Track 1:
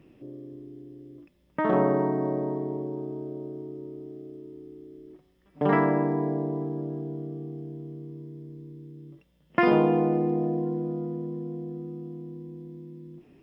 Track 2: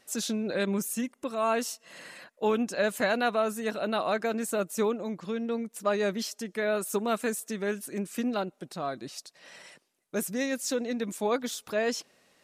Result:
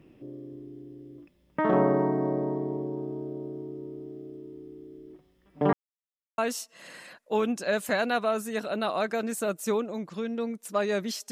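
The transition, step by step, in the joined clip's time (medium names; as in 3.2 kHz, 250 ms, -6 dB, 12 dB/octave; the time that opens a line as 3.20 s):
track 1
5.73–6.38 s: mute
6.38 s: go over to track 2 from 1.49 s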